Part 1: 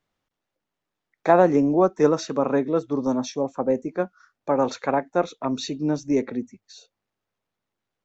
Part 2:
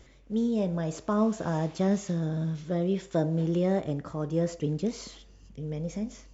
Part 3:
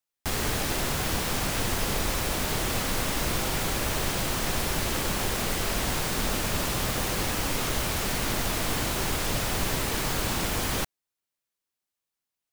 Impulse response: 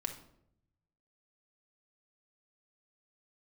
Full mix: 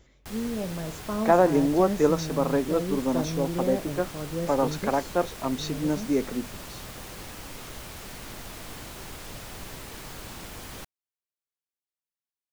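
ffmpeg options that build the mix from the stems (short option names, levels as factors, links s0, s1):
-filter_complex "[0:a]volume=0.708[s0];[1:a]volume=0.631[s1];[2:a]volume=0.237[s2];[s0][s1][s2]amix=inputs=3:normalize=0"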